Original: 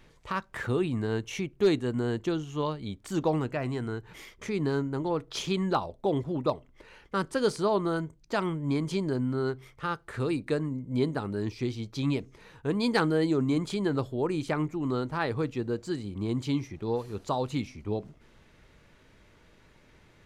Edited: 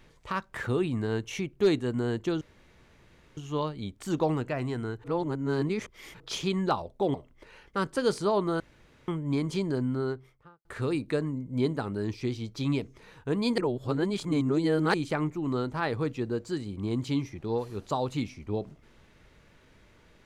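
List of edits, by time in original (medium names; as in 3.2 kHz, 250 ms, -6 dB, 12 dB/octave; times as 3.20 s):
2.41 s: insert room tone 0.96 s
4.08–5.24 s: reverse
6.18–6.52 s: delete
7.98–8.46 s: room tone
9.27–10.03 s: studio fade out
12.96–14.32 s: reverse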